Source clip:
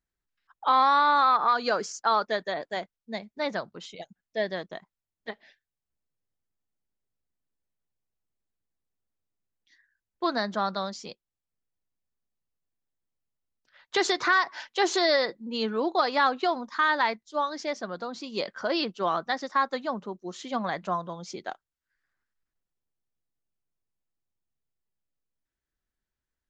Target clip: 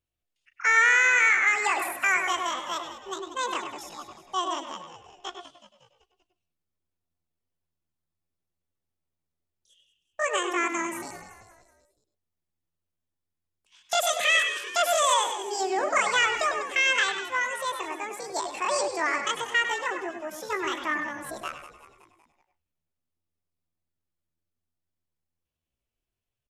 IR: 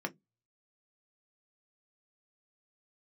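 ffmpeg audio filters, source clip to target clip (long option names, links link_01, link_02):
-filter_complex "[0:a]asplit=6[link_01][link_02][link_03][link_04][link_05][link_06];[link_02]adelay=186,afreqshift=-47,volume=-12.5dB[link_07];[link_03]adelay=372,afreqshift=-94,volume=-18dB[link_08];[link_04]adelay=558,afreqshift=-141,volume=-23.5dB[link_09];[link_05]adelay=744,afreqshift=-188,volume=-29dB[link_10];[link_06]adelay=930,afreqshift=-235,volume=-34.6dB[link_11];[link_01][link_07][link_08][link_09][link_10][link_11]amix=inputs=6:normalize=0,asetrate=76340,aresample=44100,atempo=0.577676,asplit=2[link_12][link_13];[1:a]atrim=start_sample=2205,asetrate=88200,aresample=44100,adelay=100[link_14];[link_13][link_14]afir=irnorm=-1:irlink=0,volume=-5dB[link_15];[link_12][link_15]amix=inputs=2:normalize=0"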